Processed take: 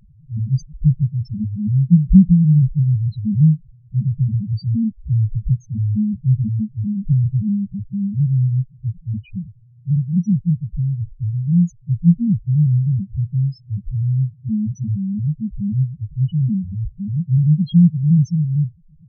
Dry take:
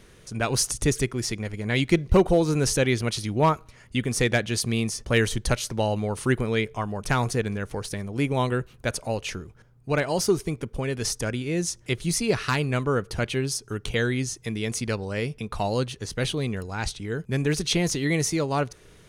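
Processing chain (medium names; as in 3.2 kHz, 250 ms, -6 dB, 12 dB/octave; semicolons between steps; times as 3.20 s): resonant low shelf 270 Hz +11.5 dB, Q 3; loudest bins only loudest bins 1; trim +2 dB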